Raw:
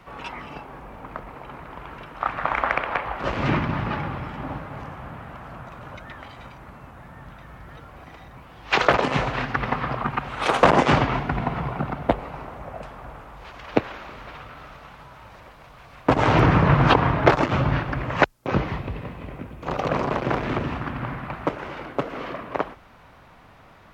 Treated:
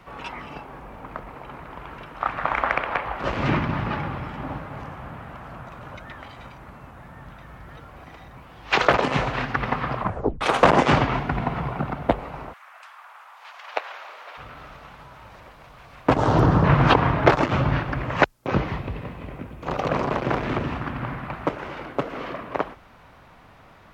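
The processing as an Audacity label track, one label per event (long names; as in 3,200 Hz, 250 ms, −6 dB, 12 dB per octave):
10.000000	10.000000	tape stop 0.41 s
12.520000	14.370000	high-pass filter 1,300 Hz → 480 Hz 24 dB per octave
16.170000	16.640000	parametric band 2,300 Hz −14.5 dB 0.87 octaves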